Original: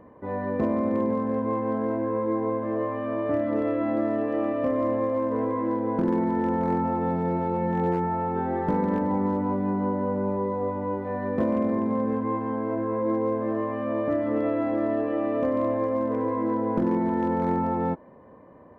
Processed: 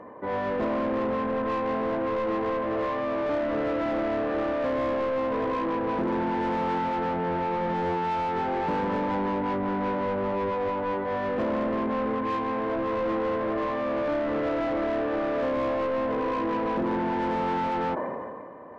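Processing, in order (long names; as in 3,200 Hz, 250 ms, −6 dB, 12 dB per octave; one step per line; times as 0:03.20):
0:06.78–0:08.05: high-frequency loss of the air 210 metres
mid-hump overdrive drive 22 dB, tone 1,900 Hz, clips at −15.5 dBFS
level that may fall only so fast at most 27 dB per second
level −5 dB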